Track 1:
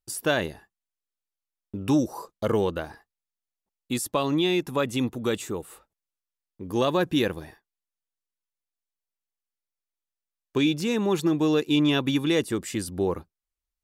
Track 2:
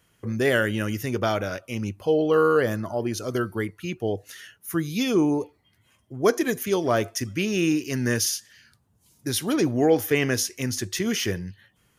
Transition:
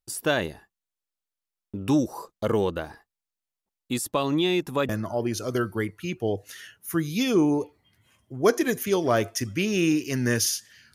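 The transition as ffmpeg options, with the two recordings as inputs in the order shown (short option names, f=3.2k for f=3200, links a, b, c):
-filter_complex "[0:a]apad=whole_dur=10.94,atrim=end=10.94,atrim=end=4.892[a];[1:a]atrim=start=2.688:end=8.74[b];[a][b]acrossfade=d=0.004:c1=hsin:c2=hsin"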